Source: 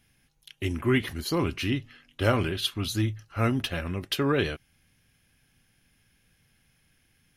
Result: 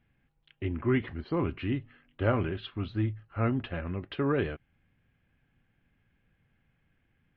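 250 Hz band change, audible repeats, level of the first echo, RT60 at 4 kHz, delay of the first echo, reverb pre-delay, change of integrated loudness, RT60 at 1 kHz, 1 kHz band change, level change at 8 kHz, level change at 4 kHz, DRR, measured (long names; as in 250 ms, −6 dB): −2.5 dB, no echo audible, no echo audible, no reverb audible, no echo audible, no reverb audible, −3.5 dB, no reverb audible, −4.0 dB, below −35 dB, −14.5 dB, no reverb audible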